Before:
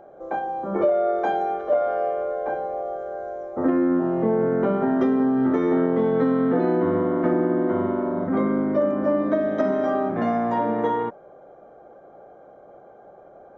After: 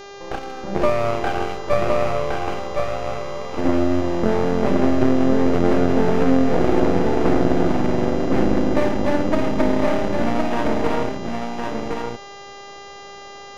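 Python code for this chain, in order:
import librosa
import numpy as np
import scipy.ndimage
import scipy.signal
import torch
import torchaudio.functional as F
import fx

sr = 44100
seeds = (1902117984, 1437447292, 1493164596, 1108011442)

p1 = fx.wiener(x, sr, points=41)
p2 = fx.wow_flutter(p1, sr, seeds[0], rate_hz=2.1, depth_cents=18.0)
p3 = np.maximum(p2, 0.0)
p4 = fx.dmg_buzz(p3, sr, base_hz=400.0, harmonics=17, level_db=-46.0, tilt_db=-5, odd_only=False)
p5 = p4 + fx.echo_single(p4, sr, ms=1064, db=-4.0, dry=0)
y = p5 * 10.0 ** (7.0 / 20.0)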